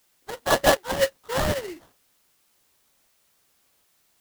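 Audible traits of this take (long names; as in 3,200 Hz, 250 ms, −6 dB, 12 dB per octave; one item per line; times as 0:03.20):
aliases and images of a low sample rate 2,400 Hz, jitter 20%
tremolo saw up 1.3 Hz, depth 70%
a quantiser's noise floor 12 bits, dither triangular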